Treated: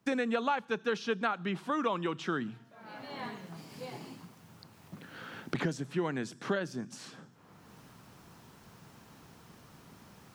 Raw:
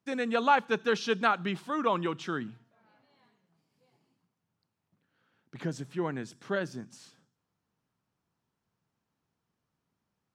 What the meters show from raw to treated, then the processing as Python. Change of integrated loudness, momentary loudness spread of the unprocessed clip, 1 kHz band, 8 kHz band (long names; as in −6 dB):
−4.5 dB, 14 LU, −5.5 dB, 0.0 dB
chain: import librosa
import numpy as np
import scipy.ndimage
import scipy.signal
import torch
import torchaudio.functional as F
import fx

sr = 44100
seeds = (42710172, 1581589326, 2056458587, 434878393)

y = fx.band_squash(x, sr, depth_pct=100)
y = y * librosa.db_to_amplitude(-2.5)